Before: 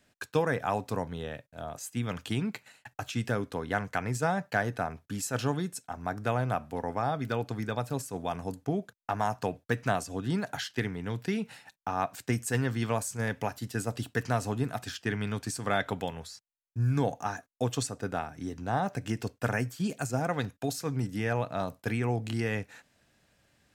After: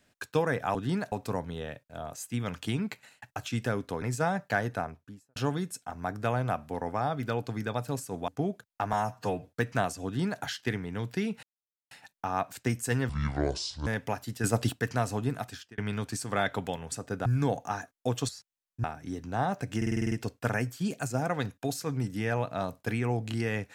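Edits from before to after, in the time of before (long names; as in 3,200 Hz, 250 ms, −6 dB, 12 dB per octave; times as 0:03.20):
0:03.65–0:04.04: remove
0:04.73–0:05.38: fade out and dull
0:08.30–0:08.57: remove
0:09.22–0:09.58: time-stretch 1.5×
0:10.16–0:10.53: duplicate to 0:00.75
0:11.54: splice in silence 0.48 s
0:12.72–0:13.21: play speed 63%
0:13.78–0:14.07: clip gain +6.5 dB
0:14.72–0:15.12: fade out
0:16.26–0:16.81: swap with 0:17.84–0:18.18
0:19.11: stutter 0.05 s, 8 plays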